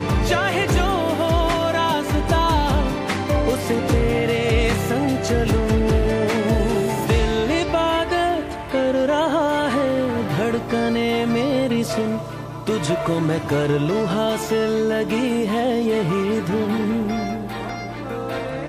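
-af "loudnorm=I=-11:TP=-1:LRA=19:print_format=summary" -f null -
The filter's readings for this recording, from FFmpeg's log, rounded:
Input Integrated:    -20.9 LUFS
Input True Peak:      -7.5 dBTP
Input LRA:             3.6 LU
Input Threshold:     -31.0 LUFS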